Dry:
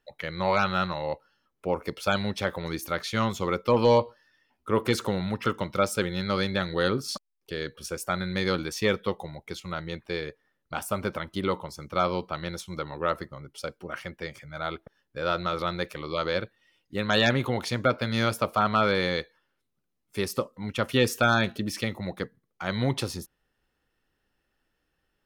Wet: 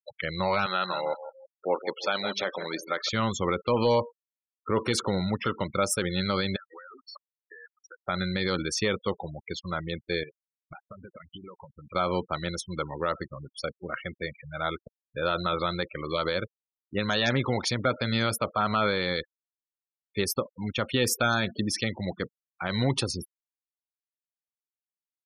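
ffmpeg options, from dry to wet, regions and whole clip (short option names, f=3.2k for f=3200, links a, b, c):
-filter_complex "[0:a]asettb=1/sr,asplit=3[a][b][c];[a]atrim=end=0.664[d];[b]atrim=start=0.66:end=3.09,asetpts=PTS-STARTPTS,afade=t=in:d=0.004:c=qsin,afade=t=out:st=2.426:d=0.004:c=qsin,highpass=330,lowpass=7.3k,aecho=1:1:163|326|489|652:0.266|0.101|0.0384|0.0146,atrim=end_sample=107163[e];[c]atrim=start=3.086[f];[d][e]acrossfade=d=0.004:c1=hsin:c2=qsin[g];[g][f]acrossfade=d=0.004:c1=qsin:c2=hsin,asettb=1/sr,asplit=3[h][i][j];[h]atrim=end=6.564[k];[i]atrim=start=6.56:end=8.05,asetpts=PTS-STARTPTS,afade=t=in:d=0.004:c=qsin,afade=t=out:st=1.486:d=0.004:c=qsin,bandpass=f=1.5k:t=q:w=1.3,acompressor=threshold=-41dB:ratio=20:attack=3.2:release=140:knee=1:detection=peak[l];[j]atrim=start=8.046[m];[k][l]acrossfade=d=0.004:c1=hsin:c2=qsin[n];[n][m]acrossfade=d=0.004:c1=qsin:c2=hsin,asettb=1/sr,asplit=3[o][p][q];[o]atrim=end=10.234[r];[p]atrim=start=10.23:end=11.95,asetpts=PTS-STARTPTS,afade=t=in:d=0.004:c=qsin,afade=t=out:st=1.716:d=0.004:c=qsin,acompressor=threshold=-41dB:ratio=16:attack=3.2:release=140:knee=1:detection=peak,lowpass=f=2.8k:t=q:w=2[s];[q]atrim=start=11.946[t];[r][s]acrossfade=d=0.004:c1=hsin:c2=qsin[u];[u][t]acrossfade=d=0.004:c1=qsin:c2=hsin,afftfilt=real='re*gte(hypot(re,im),0.0158)':imag='im*gte(hypot(re,im),0.0158)':win_size=1024:overlap=0.75,highshelf=f=4.4k:g=8,alimiter=limit=-16.5dB:level=0:latency=1:release=61,volume=1.5dB"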